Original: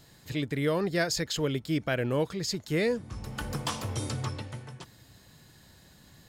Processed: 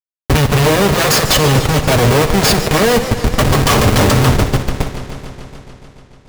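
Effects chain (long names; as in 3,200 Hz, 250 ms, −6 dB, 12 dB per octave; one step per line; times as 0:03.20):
lower of the sound and its delayed copy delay 1.7 ms
high-pass filter 130 Hz 24 dB per octave
comparator with hysteresis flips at −36.5 dBFS
notch comb filter 170 Hz
on a send: flutter between parallel walls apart 10.3 metres, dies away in 0.23 s
on the sum: boost into a limiter +34.5 dB
feedback echo with a swinging delay time 145 ms, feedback 77%, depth 142 cents, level −12 dB
level −5 dB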